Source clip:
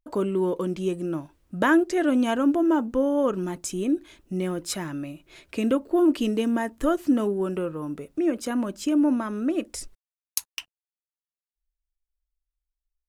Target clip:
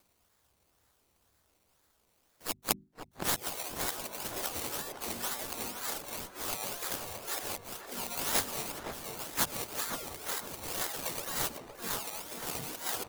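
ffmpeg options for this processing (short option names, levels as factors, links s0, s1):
-filter_complex "[0:a]areverse,acompressor=threshold=0.0355:ratio=6,asetrate=72056,aresample=44100,atempo=0.612027,highpass=180,afftfilt=real='re*lt(hypot(re,im),0.0708)':imag='im*lt(hypot(re,im),0.0708)':win_size=1024:overlap=0.75,acrusher=samples=21:mix=1:aa=0.000001:lfo=1:lforange=12.6:lforate=2,crystalizer=i=5:c=0,bandreject=f=50:t=h:w=6,bandreject=f=100:t=h:w=6,bandreject=f=150:t=h:w=6,bandreject=f=200:t=h:w=6,bandreject=f=250:t=h:w=6,asplit=2[s0][s1];[s1]adelay=515,lowpass=f=1000:p=1,volume=0.631,asplit=2[s2][s3];[s3]adelay=515,lowpass=f=1000:p=1,volume=0.42,asplit=2[s4][s5];[s5]adelay=515,lowpass=f=1000:p=1,volume=0.42,asplit=2[s6][s7];[s7]adelay=515,lowpass=f=1000:p=1,volume=0.42,asplit=2[s8][s9];[s9]adelay=515,lowpass=f=1000:p=1,volume=0.42[s10];[s2][s4][s6][s8][s10]amix=inputs=5:normalize=0[s11];[s0][s11]amix=inputs=2:normalize=0,asplit=3[s12][s13][s14];[s13]asetrate=35002,aresample=44100,atempo=1.25992,volume=0.562[s15];[s14]asetrate=66075,aresample=44100,atempo=0.66742,volume=0.562[s16];[s12][s15][s16]amix=inputs=3:normalize=0,acompressor=mode=upward:threshold=0.00316:ratio=2.5,volume=0.891"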